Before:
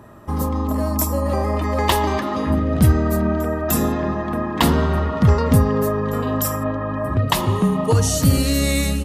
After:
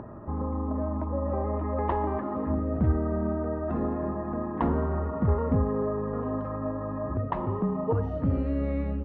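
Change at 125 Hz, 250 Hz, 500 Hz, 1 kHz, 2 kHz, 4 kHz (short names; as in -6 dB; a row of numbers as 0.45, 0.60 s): -10.5 dB, -8.5 dB, -7.5 dB, -9.5 dB, -17.5 dB, under -35 dB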